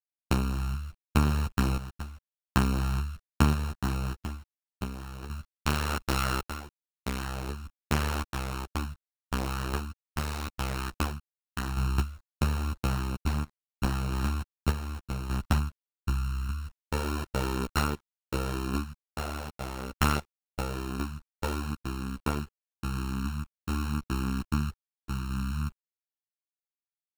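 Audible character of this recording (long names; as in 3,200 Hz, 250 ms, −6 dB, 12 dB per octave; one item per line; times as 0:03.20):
a buzz of ramps at a fixed pitch in blocks of 32 samples
sample-and-hold tremolo 1.7 Hz, depth 75%
a quantiser's noise floor 10 bits, dither none
a shimmering, thickened sound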